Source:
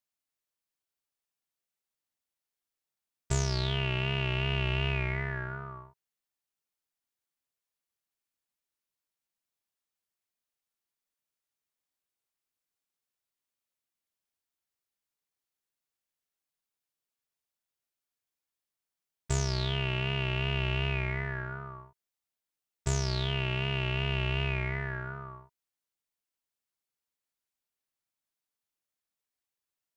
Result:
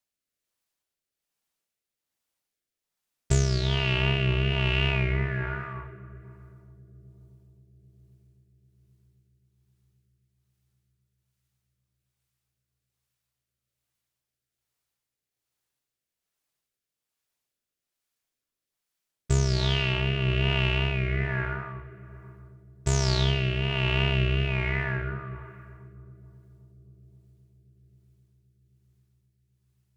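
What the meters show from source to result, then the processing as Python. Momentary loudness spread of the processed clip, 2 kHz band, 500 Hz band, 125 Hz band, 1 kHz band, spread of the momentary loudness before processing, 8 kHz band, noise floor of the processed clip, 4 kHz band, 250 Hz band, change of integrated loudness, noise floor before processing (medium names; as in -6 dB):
14 LU, +4.5 dB, +5.0 dB, +6.0 dB, +3.0 dB, 11 LU, +3.5 dB, under -85 dBFS, +5.0 dB, +6.5 dB, +5.0 dB, under -85 dBFS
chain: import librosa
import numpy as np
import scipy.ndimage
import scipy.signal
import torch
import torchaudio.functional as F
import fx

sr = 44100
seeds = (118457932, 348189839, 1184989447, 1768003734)

y = fx.echo_filtered(x, sr, ms=263, feedback_pct=84, hz=970.0, wet_db=-20)
y = fx.rev_freeverb(y, sr, rt60_s=2.0, hf_ratio=0.75, predelay_ms=85, drr_db=10.5)
y = fx.rotary(y, sr, hz=1.2)
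y = y * 10.0 ** (7.0 / 20.0)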